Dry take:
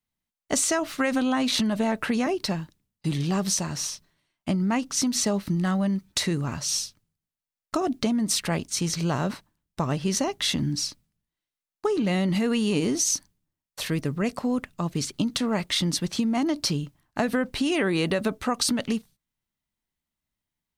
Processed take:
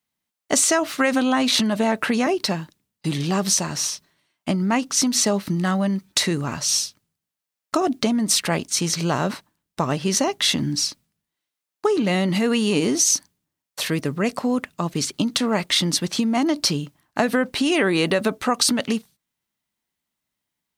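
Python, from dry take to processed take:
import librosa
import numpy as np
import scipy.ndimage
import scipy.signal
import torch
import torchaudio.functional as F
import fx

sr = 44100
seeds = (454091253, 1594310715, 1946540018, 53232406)

y = fx.highpass(x, sr, hz=220.0, slope=6)
y = F.gain(torch.from_numpy(y), 6.0).numpy()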